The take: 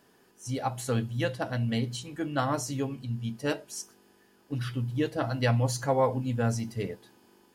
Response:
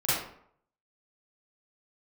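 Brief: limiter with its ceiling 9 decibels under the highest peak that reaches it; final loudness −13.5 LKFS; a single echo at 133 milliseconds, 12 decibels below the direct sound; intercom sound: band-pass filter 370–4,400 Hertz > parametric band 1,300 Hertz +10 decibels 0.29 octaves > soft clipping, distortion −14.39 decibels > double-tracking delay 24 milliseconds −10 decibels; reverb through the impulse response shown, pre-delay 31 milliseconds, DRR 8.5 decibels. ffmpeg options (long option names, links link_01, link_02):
-filter_complex "[0:a]alimiter=limit=-22.5dB:level=0:latency=1,aecho=1:1:133:0.251,asplit=2[link_01][link_02];[1:a]atrim=start_sample=2205,adelay=31[link_03];[link_02][link_03]afir=irnorm=-1:irlink=0,volume=-20dB[link_04];[link_01][link_04]amix=inputs=2:normalize=0,highpass=370,lowpass=4400,equalizer=frequency=1300:width_type=o:width=0.29:gain=10,asoftclip=threshold=-27dB,asplit=2[link_05][link_06];[link_06]adelay=24,volume=-10dB[link_07];[link_05][link_07]amix=inputs=2:normalize=0,volume=24dB"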